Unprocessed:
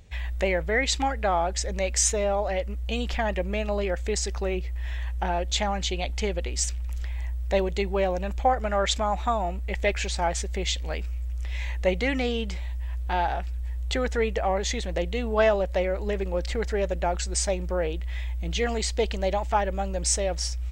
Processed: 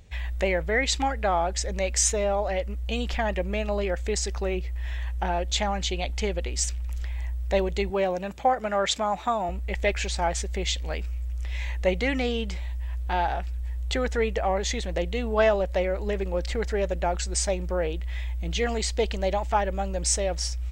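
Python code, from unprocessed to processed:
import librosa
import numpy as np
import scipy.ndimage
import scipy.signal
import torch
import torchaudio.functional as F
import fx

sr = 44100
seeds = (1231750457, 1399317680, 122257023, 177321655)

y = fx.highpass(x, sr, hz=93.0, slope=24, at=(7.9, 9.49))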